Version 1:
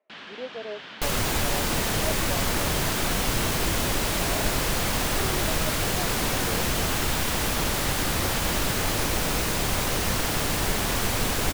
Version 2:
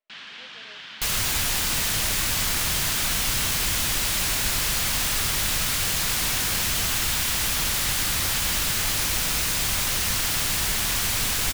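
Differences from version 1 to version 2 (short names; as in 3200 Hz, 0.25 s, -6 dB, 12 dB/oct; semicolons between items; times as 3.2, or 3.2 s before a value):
first sound +11.0 dB; second sound +11.0 dB; master: add passive tone stack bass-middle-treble 5-5-5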